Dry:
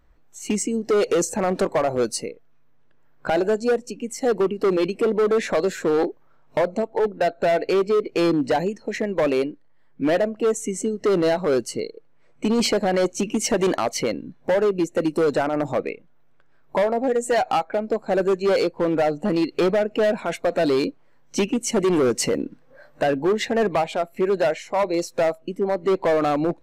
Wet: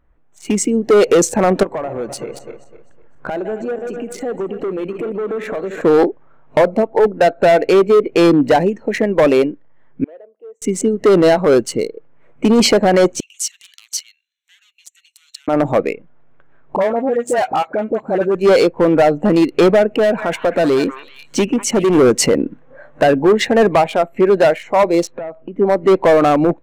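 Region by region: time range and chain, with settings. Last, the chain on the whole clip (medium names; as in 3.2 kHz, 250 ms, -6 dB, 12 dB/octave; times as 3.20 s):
1.63–5.81 s: backward echo that repeats 127 ms, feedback 54%, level -11.5 dB + compression 4:1, threshold -31 dBFS
10.04–10.62 s: band-pass filter 460 Hz, Q 3.8 + differentiator
13.20–15.48 s: treble shelf 5.4 kHz +5 dB + compression, threshold -24 dBFS + inverse Chebyshev high-pass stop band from 580 Hz, stop band 80 dB
16.76–18.35 s: high-pass 55 Hz + compression 1.5:1, threshold -30 dBFS + phase dispersion highs, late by 47 ms, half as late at 970 Hz
19.91–21.95 s: repeats whose band climbs or falls 194 ms, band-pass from 1.3 kHz, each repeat 1.4 oct, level -4 dB + compression 1.5:1, threshold -25 dBFS
25.07–25.59 s: compression 12:1, threshold -32 dBFS + distance through air 230 m
whole clip: local Wiener filter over 9 samples; level rider gain up to 9 dB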